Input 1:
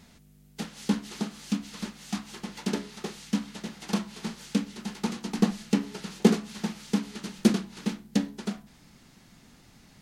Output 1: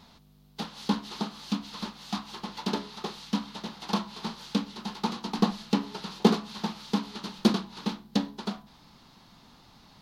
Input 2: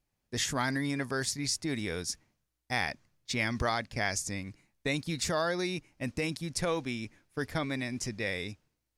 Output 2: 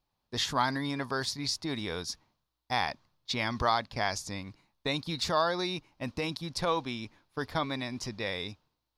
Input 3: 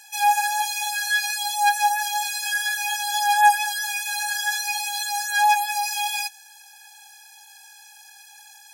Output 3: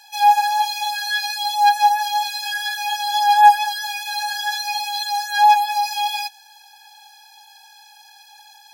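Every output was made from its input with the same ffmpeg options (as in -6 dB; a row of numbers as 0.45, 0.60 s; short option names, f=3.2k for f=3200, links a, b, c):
-af "equalizer=f=1k:t=o:w=1:g=11,equalizer=f=2k:t=o:w=1:g=-5,equalizer=f=4k:t=o:w=1:g=10,equalizer=f=8k:t=o:w=1:g=-9,volume=-2dB"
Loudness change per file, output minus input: -0.5, +0.5, +3.5 LU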